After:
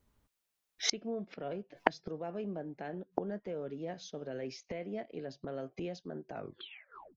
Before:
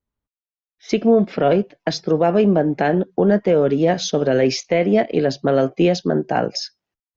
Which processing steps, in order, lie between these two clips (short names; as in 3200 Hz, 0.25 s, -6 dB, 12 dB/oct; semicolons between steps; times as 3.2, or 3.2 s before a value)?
tape stop at the end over 0.87 s; flipped gate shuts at -24 dBFS, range -35 dB; gain +11 dB